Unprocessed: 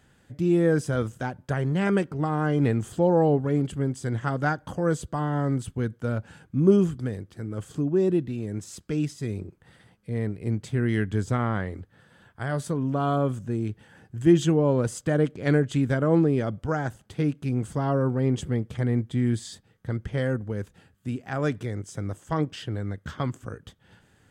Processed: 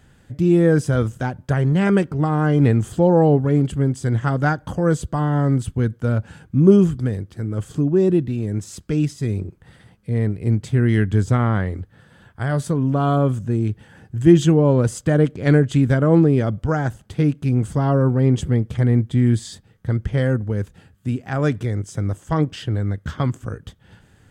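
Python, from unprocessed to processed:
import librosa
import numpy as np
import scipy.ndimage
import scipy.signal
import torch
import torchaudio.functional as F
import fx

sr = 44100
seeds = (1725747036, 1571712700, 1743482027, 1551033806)

y = fx.low_shelf(x, sr, hz=140.0, db=8.0)
y = y * 10.0 ** (4.5 / 20.0)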